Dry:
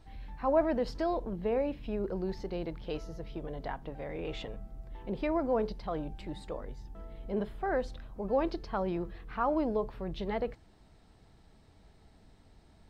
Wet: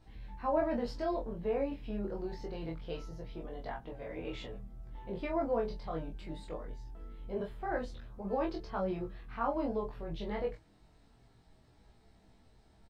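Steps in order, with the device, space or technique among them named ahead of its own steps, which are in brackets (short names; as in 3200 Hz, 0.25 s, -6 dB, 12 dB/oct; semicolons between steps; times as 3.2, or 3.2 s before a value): double-tracked vocal (doubler 25 ms -4 dB; chorus 0.24 Hz, delay 16 ms, depth 2.5 ms); gain -1.5 dB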